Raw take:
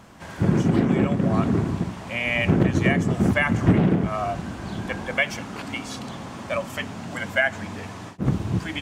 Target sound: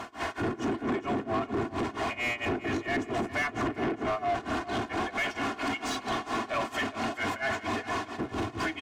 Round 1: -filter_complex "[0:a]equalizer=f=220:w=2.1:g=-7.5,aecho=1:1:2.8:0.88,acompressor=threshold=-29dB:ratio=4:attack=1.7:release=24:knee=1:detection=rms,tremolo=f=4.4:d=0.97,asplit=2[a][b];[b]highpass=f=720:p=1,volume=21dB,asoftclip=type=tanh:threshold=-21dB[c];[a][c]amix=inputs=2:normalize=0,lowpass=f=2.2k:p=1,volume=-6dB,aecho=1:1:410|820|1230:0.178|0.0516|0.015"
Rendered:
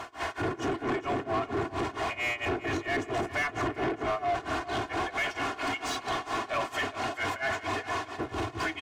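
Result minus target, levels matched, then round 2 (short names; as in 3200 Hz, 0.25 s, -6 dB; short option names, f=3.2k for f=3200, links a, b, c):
250 Hz band -3.0 dB
-filter_complex "[0:a]equalizer=f=220:w=2.1:g=4,aecho=1:1:2.8:0.88,acompressor=threshold=-29dB:ratio=4:attack=1.7:release=24:knee=1:detection=rms,tremolo=f=4.4:d=0.97,asplit=2[a][b];[b]highpass=f=720:p=1,volume=21dB,asoftclip=type=tanh:threshold=-21dB[c];[a][c]amix=inputs=2:normalize=0,lowpass=f=2.2k:p=1,volume=-6dB,aecho=1:1:410|820|1230:0.178|0.0516|0.015"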